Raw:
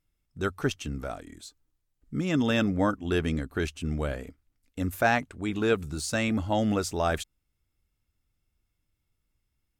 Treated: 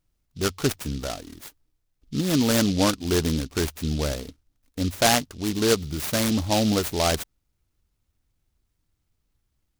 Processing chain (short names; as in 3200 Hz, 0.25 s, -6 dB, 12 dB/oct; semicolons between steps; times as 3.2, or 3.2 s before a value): noise-modulated delay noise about 4000 Hz, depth 0.12 ms; gain +4 dB